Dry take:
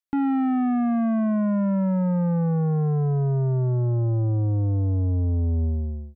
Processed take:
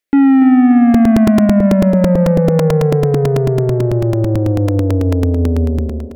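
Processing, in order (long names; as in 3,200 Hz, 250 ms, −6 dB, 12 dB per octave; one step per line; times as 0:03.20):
octave-band graphic EQ 125/250/500/1,000/2,000 Hz −4/+4/+10/−8/+9 dB
feedback echo with a high-pass in the loop 288 ms, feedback 58%, high-pass 160 Hz, level −10.5 dB
regular buffer underruns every 0.11 s, samples 128, repeat, from 0:00.94
level +8.5 dB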